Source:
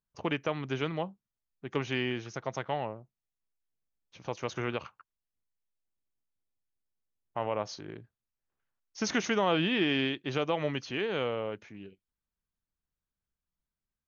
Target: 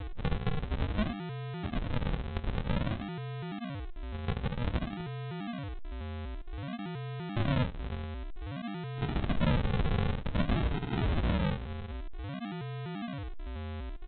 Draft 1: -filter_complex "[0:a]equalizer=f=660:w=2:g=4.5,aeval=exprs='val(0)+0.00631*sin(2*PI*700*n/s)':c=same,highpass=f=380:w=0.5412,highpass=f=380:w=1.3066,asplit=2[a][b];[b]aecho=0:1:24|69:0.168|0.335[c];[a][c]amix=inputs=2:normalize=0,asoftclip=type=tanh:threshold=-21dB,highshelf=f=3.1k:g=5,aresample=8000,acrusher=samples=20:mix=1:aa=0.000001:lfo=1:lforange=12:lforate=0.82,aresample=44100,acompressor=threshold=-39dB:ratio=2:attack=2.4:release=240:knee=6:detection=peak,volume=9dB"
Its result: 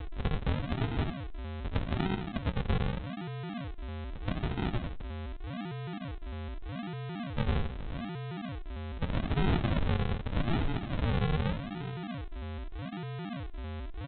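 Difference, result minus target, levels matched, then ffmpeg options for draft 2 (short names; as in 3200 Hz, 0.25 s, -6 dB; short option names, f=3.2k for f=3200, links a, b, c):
decimation with a swept rate: distortion +8 dB
-filter_complex "[0:a]equalizer=f=660:w=2:g=4.5,aeval=exprs='val(0)+0.00631*sin(2*PI*700*n/s)':c=same,highpass=f=380:w=0.5412,highpass=f=380:w=1.3066,asplit=2[a][b];[b]aecho=0:1:24|69:0.168|0.335[c];[a][c]amix=inputs=2:normalize=0,asoftclip=type=tanh:threshold=-21dB,highshelf=f=3.1k:g=5,aresample=8000,acrusher=samples=20:mix=1:aa=0.000001:lfo=1:lforange=12:lforate=0.53,aresample=44100,acompressor=threshold=-39dB:ratio=2:attack=2.4:release=240:knee=6:detection=peak,volume=9dB"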